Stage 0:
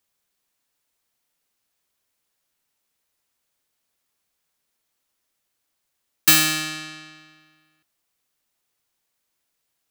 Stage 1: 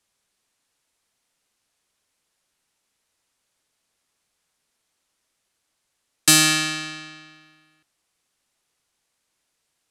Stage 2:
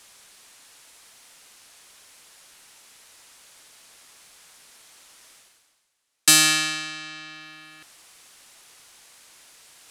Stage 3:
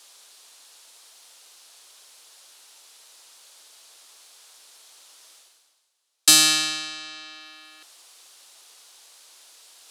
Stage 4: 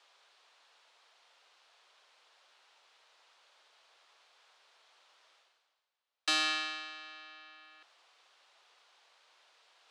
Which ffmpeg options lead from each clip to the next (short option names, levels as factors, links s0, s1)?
-filter_complex "[0:a]lowpass=f=11000:w=0.5412,lowpass=f=11000:w=1.3066,acrossover=split=420|990|3500[s0][s1][s2][s3];[s2]alimiter=limit=0.106:level=0:latency=1[s4];[s0][s1][s4][s3]amix=inputs=4:normalize=0,volume=1.58"
-af "lowshelf=f=470:g=-8.5,areverse,acompressor=mode=upward:threshold=0.0251:ratio=2.5,areverse"
-filter_complex "[0:a]equalizer=f=125:t=o:w=1:g=-7,equalizer=f=2000:t=o:w=1:g=-6,equalizer=f=4000:t=o:w=1:g=4,acrossover=split=300|1800[s0][s1][s2];[s0]aeval=exprs='sgn(val(0))*max(abs(val(0))-0.0015,0)':c=same[s3];[s3][s1][s2]amix=inputs=3:normalize=0"
-af "highpass=480,lowpass=2500,volume=0.531"